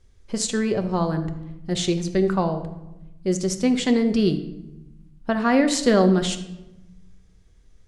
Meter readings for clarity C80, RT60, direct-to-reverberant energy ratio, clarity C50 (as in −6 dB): 13.0 dB, 1.0 s, 7.0 dB, 11.0 dB